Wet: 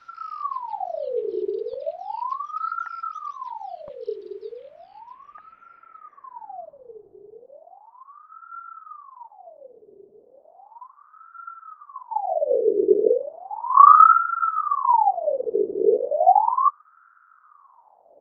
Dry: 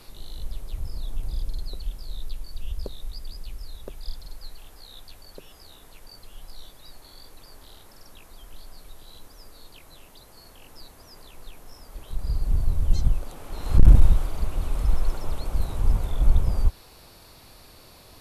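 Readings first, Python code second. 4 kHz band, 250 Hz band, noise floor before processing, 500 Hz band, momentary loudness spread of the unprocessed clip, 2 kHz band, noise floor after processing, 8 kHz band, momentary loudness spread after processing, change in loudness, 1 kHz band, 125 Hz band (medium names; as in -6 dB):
under -15 dB, +3.0 dB, -50 dBFS, +21.0 dB, 22 LU, +8.0 dB, -56 dBFS, no reading, 23 LU, +8.0 dB, +27.5 dB, under -35 dB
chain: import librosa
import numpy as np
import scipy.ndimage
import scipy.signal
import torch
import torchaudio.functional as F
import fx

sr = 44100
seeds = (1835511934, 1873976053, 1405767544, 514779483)

y = fx.filter_sweep_lowpass(x, sr, from_hz=3000.0, to_hz=220.0, start_s=4.44, end_s=7.54, q=1.9)
y = fx.low_shelf(y, sr, hz=160.0, db=11.0)
y = fx.ring_lfo(y, sr, carrier_hz=880.0, swing_pct=55, hz=0.35)
y = y * librosa.db_to_amplitude(-9.0)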